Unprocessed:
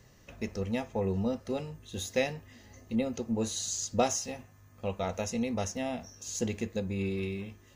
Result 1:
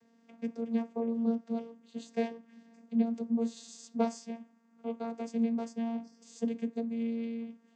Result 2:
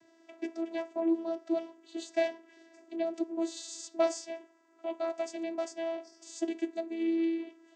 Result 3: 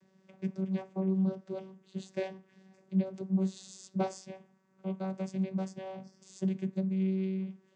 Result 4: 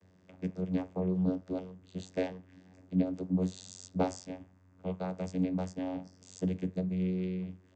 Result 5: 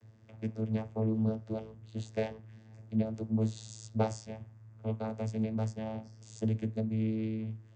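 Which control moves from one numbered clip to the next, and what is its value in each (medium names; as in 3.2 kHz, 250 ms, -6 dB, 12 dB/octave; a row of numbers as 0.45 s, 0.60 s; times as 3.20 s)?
vocoder, frequency: 230 Hz, 330 Hz, 190 Hz, 92 Hz, 110 Hz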